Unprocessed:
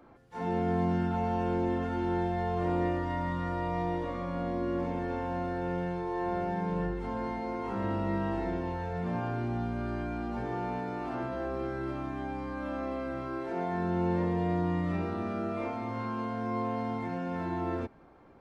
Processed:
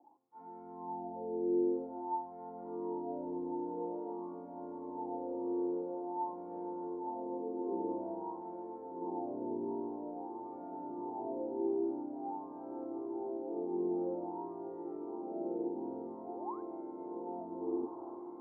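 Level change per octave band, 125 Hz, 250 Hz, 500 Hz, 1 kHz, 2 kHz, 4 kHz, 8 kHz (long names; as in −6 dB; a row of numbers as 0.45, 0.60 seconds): −25.0 dB, −6.5 dB, −4.5 dB, −7.5 dB, below −35 dB, below −30 dB, can't be measured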